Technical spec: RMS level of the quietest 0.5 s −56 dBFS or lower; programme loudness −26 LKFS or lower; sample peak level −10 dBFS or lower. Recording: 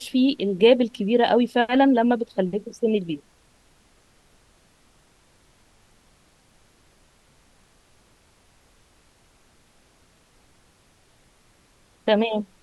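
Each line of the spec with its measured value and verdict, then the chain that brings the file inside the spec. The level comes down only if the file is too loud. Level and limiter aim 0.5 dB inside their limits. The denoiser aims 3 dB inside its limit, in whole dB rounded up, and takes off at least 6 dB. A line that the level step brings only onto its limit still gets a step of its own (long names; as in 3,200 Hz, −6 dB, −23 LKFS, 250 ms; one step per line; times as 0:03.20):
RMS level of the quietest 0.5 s −59 dBFS: in spec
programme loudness −21.5 LKFS: out of spec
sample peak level −4.0 dBFS: out of spec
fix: level −5 dB
brickwall limiter −10.5 dBFS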